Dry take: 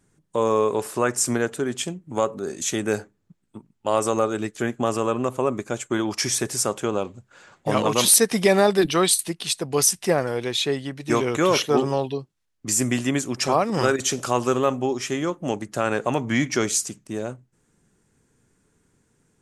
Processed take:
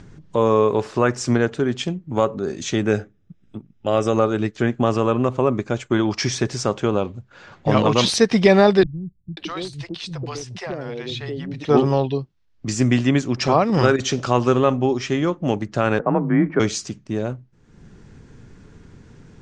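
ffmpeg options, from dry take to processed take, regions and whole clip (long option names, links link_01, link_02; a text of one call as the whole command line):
ffmpeg -i in.wav -filter_complex "[0:a]asettb=1/sr,asplit=3[link_01][link_02][link_03];[link_01]atrim=end=2.914[link_04];[link_02]atrim=start=2.91:end=4.14,asetpts=PTS-STARTPTS,afade=type=in:duration=0.004:curve=qsin,afade=type=out:start_time=1.226:duration=0.004:curve=qsin,asuperstop=centerf=4400:order=12:qfactor=6.8,equalizer=frequency=960:width=5:gain=-12[link_05];[link_03]atrim=start=4.136[link_06];[link_04][link_05]acrossfade=duration=0.004:curve1=hsin:curve2=qsin[link_07];[link_07][link_06]acrossfade=duration=0.004:curve1=qsin:curve2=hsin,asettb=1/sr,asplit=3[link_08][link_09][link_10];[link_08]atrim=end=8.834[link_11];[link_09]atrim=start=8.83:end=11.65,asetpts=PTS-STARTPTS,afade=type=in:duration=0.004:curve=qsin,afade=type=out:start_time=2.816:duration=0.004:curve=qsin,acrossover=split=170|580[link_12][link_13][link_14];[link_14]adelay=540[link_15];[link_13]adelay=620[link_16];[link_12][link_16][link_15]amix=inputs=3:normalize=0,atrim=end_sample=124362,acompressor=threshold=-33dB:ratio=2.5:attack=3.2:release=140:knee=1:detection=peak,aeval=exprs='0.0668*(abs(mod(val(0)/0.0668+3,4)-2)-1)':channel_layout=same[link_17];[link_10]atrim=start=11.646[link_18];[link_11][link_17]acrossfade=duration=0.004:curve1=hsin:curve2=qsin[link_19];[link_19][link_18]acrossfade=duration=0.004:curve1=qsin:curve2=hsin,asettb=1/sr,asplit=3[link_20][link_21][link_22];[link_20]atrim=end=15.994[link_23];[link_21]atrim=start=15.99:end=16.6,asetpts=PTS-STARTPTS,afade=type=in:duration=0.004:curve=qsin,afade=type=out:start_time=0.606:duration=0.004:curve=qsin,lowpass=frequency=1600:width=0.5412,lowpass=frequency=1600:width=1.3066,afreqshift=32[link_24];[link_22]atrim=start=16.596[link_25];[link_23][link_24]acrossfade=duration=0.004:curve1=hsin:curve2=qsin[link_26];[link_26][link_25]acrossfade=duration=0.004:curve1=qsin:curve2=hsin,acompressor=mode=upward:threshold=-39dB:ratio=2.5,lowpass=frequency=5400:width=0.5412,lowpass=frequency=5400:width=1.3066,lowshelf=frequency=170:gain=10,volume=2.5dB" out.wav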